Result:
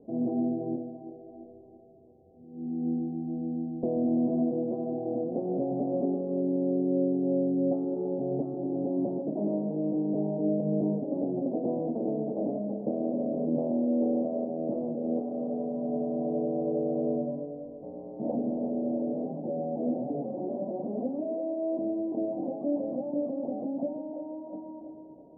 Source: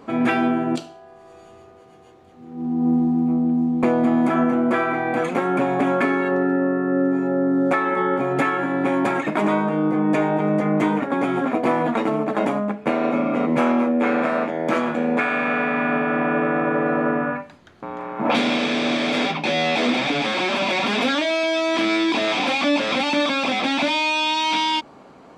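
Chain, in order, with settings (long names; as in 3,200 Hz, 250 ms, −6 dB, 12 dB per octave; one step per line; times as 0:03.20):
Butterworth low-pass 670 Hz 48 dB per octave
echo with a time of its own for lows and highs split 320 Hz, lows 131 ms, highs 338 ms, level −8.5 dB
level −8.5 dB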